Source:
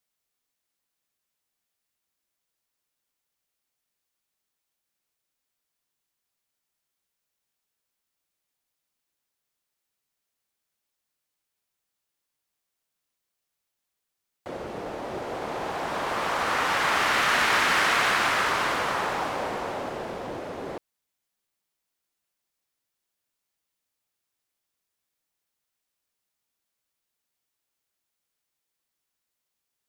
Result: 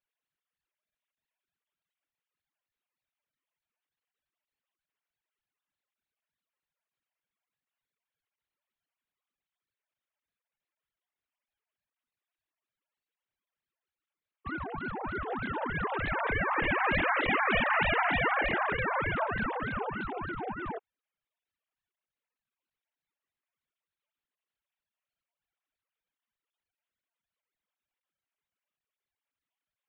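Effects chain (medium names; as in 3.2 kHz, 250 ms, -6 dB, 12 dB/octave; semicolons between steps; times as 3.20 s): formants replaced by sine waves; low-pass that closes with the level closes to 1.9 kHz, closed at -23 dBFS; ring modulator with a swept carrier 510 Hz, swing 80%, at 3.3 Hz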